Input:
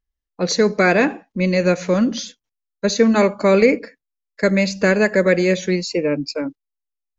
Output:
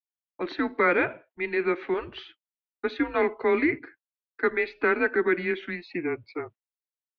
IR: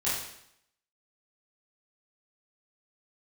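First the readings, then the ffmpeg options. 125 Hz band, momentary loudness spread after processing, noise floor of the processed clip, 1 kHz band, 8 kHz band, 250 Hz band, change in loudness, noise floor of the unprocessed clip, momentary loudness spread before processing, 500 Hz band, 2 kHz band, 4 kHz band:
-20.5 dB, 13 LU, under -85 dBFS, -5.5 dB, no reading, -12.0 dB, -9.0 dB, -82 dBFS, 11 LU, -9.5 dB, -5.5 dB, -16.5 dB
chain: -af "highpass=f=540:t=q:w=0.5412,highpass=f=540:t=q:w=1.307,lowpass=f=3200:t=q:w=0.5176,lowpass=f=3200:t=q:w=0.7071,lowpass=f=3200:t=q:w=1.932,afreqshift=-170,agate=range=0.0224:threshold=0.00501:ratio=3:detection=peak,adynamicequalizer=threshold=0.0224:dfrequency=1000:dqfactor=0.77:tfrequency=1000:tqfactor=0.77:attack=5:release=100:ratio=0.375:range=2.5:mode=cutabove:tftype=bell,volume=0.668"

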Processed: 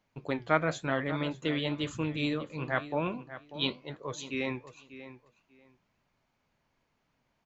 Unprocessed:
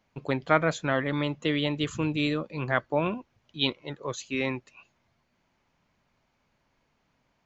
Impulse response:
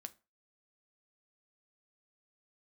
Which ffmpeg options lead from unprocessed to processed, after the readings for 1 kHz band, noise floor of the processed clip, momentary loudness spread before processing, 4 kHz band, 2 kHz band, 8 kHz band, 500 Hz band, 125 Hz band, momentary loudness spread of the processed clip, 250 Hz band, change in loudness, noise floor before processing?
-4.0 dB, -77 dBFS, 11 LU, -4.0 dB, -4.0 dB, no reading, -4.0 dB, -4.5 dB, 15 LU, -4.0 dB, -4.5 dB, -73 dBFS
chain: -filter_complex "[0:a]flanger=delay=6.3:depth=7.1:regen=-71:speed=0.98:shape=triangular,asplit=2[s0][s1];[s1]adelay=591,lowpass=f=3900:p=1,volume=0.211,asplit=2[s2][s3];[s3]adelay=591,lowpass=f=3900:p=1,volume=0.19[s4];[s2][s4]amix=inputs=2:normalize=0[s5];[s0][s5]amix=inputs=2:normalize=0"

